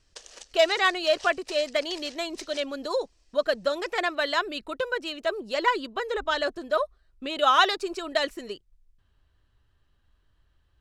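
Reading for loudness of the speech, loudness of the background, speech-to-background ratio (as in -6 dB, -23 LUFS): -26.5 LUFS, -44.5 LUFS, 18.0 dB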